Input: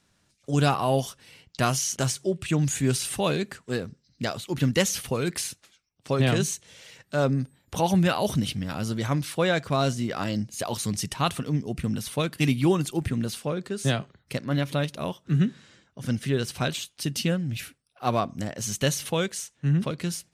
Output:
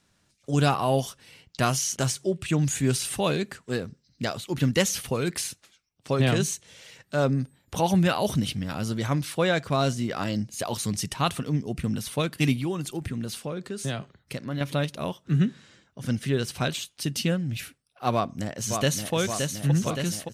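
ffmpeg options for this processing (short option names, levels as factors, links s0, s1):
-filter_complex "[0:a]asettb=1/sr,asplit=3[s0][s1][s2];[s0]atrim=end=12.564[s3];[s1]atrim=start=12.56:end=14.61,asetpts=PTS-STARTPTS,afade=t=in:d=0.004:c=qsin,afade=t=out:st=2.046:d=0.004:c=qsin,acompressor=threshold=0.0316:ratio=2:attack=3.2:release=140:knee=1:detection=peak[s4];[s2]atrim=start=14.606[s5];[s3][s4]acrossfade=d=0.004:c1=hsin:c2=qsin[s6];[s6][s5]acrossfade=d=0.004:c1=qsin:c2=hsin,asplit=2[s7][s8];[s8]afade=t=in:st=18.13:d=0.01,afade=t=out:st=19.14:d=0.01,aecho=0:1:570|1140|1710|2280|2850|3420|3990|4560|5130|5700|6270|6840:0.562341|0.421756|0.316317|0.237238|0.177928|0.133446|0.100085|0.0750635|0.0562976|0.0422232|0.0316674|0.0237506[s9];[s7][s9]amix=inputs=2:normalize=0"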